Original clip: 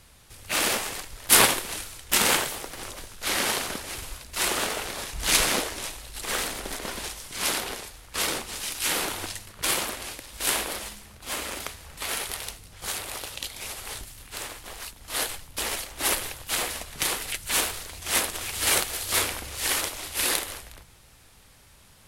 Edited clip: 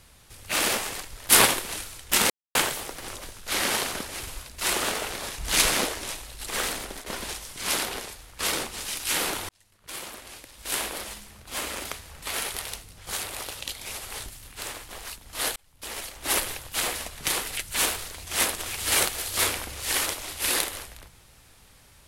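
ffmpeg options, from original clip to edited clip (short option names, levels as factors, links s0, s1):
-filter_complex "[0:a]asplit=5[s0][s1][s2][s3][s4];[s0]atrim=end=2.3,asetpts=PTS-STARTPTS,afade=t=out:st=2.296:d=0.004:c=hsin,apad=pad_dur=0.25[s5];[s1]atrim=start=2.3:end=6.81,asetpts=PTS-STARTPTS,afade=t=in:d=0.004:c=hsin,afade=t=out:st=4.25:d=0.26:silence=0.298538[s6];[s2]atrim=start=6.81:end=9.24,asetpts=PTS-STARTPTS,afade=t=in:d=0.004:c=hsin:silence=0.298538,afade=t=out:st=2.426:d=0.004:c=hsin[s7];[s3]atrim=start=9.24:end=15.31,asetpts=PTS-STARTPTS,afade=t=in:d=1.9,afade=t=out:st=6.066:d=0.004:c=hsin[s8];[s4]atrim=start=15.31,asetpts=PTS-STARTPTS,afade=t=in:d=0.76[s9];[s5][s6][s7][s8][s9]concat=n=5:v=0:a=1"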